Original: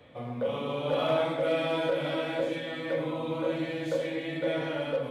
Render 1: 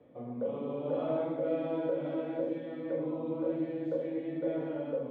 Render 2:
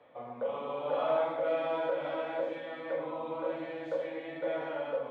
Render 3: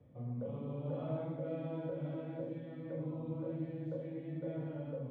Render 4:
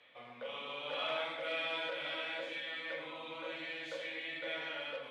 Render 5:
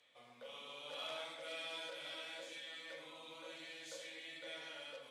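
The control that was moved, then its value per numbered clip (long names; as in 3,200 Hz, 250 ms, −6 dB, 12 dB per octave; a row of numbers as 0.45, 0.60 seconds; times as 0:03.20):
resonant band-pass, frequency: 310, 860, 120, 2,600, 6,800 Hertz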